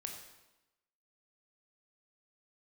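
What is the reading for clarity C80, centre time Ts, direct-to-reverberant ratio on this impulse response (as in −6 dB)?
7.0 dB, 35 ms, 2.0 dB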